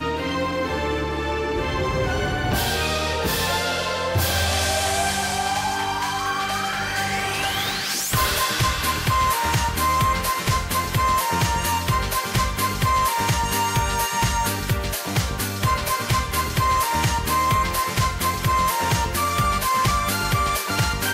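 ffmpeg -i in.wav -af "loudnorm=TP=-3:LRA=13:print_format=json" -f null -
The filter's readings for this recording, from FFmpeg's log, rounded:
"input_i" : "-21.6",
"input_tp" : "-10.7",
"input_lra" : "2.1",
"input_thresh" : "-31.6",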